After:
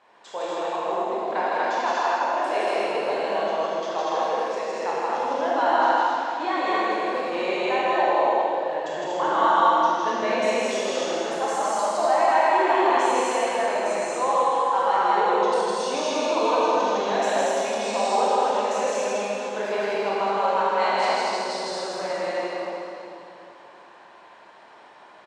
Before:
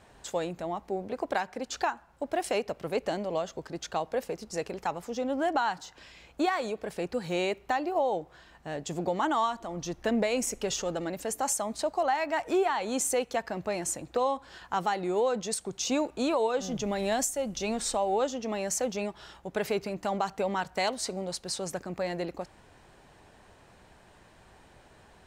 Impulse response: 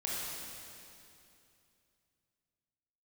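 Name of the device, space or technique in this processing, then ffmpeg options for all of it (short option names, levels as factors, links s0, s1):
station announcement: -filter_complex "[0:a]highpass=420,lowpass=4200,equalizer=f=1000:t=o:w=0.3:g=9,aecho=1:1:160.3|239.1:0.891|0.891[s0];[1:a]atrim=start_sample=2205[s1];[s0][s1]afir=irnorm=-1:irlink=0"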